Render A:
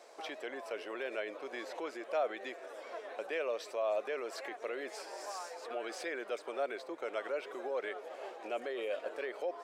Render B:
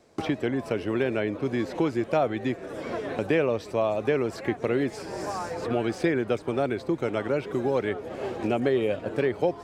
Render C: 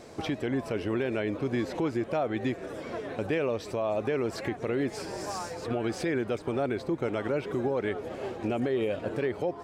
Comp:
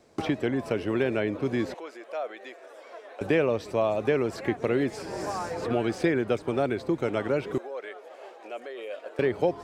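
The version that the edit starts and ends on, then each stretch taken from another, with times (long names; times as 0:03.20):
B
0:01.74–0:03.21: punch in from A
0:07.58–0:09.19: punch in from A
not used: C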